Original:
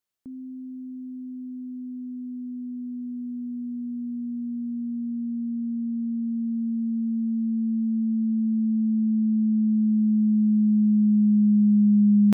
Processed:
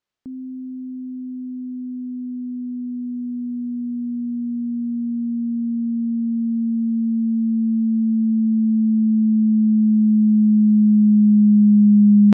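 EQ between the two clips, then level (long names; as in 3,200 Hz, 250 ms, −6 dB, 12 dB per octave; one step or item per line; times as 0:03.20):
high-frequency loss of the air 110 metres
+6.0 dB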